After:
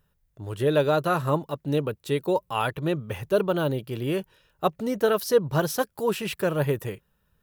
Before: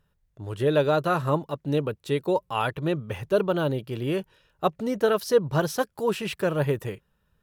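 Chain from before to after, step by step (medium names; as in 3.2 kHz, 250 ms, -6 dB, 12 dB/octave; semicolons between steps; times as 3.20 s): treble shelf 12 kHz +11.5 dB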